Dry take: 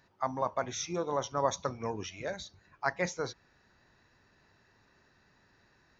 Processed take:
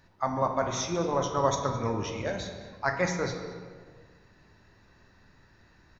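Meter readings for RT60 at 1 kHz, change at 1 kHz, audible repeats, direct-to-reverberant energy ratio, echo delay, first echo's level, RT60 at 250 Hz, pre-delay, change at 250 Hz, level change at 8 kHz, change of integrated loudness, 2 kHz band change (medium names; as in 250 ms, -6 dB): 1.6 s, +4.5 dB, 1, 3.0 dB, 216 ms, -17.5 dB, 2.0 s, 3 ms, +7.5 dB, no reading, +4.5 dB, +4.5 dB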